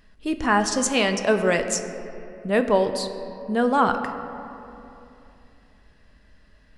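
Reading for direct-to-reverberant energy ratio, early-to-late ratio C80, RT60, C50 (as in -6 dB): 6.5 dB, 9.5 dB, 2.9 s, 9.0 dB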